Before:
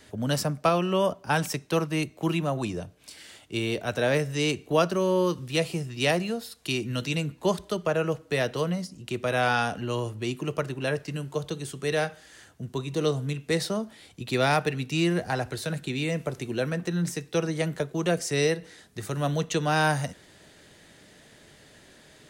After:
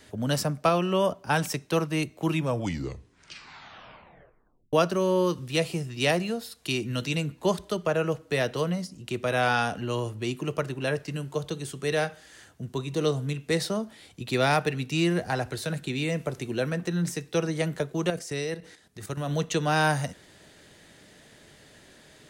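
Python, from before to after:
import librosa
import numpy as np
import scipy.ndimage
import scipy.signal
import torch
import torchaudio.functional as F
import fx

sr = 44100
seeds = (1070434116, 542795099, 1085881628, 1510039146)

y = fx.level_steps(x, sr, step_db=10, at=(18.1, 19.31))
y = fx.edit(y, sr, fx.tape_stop(start_s=2.25, length_s=2.48), tone=tone)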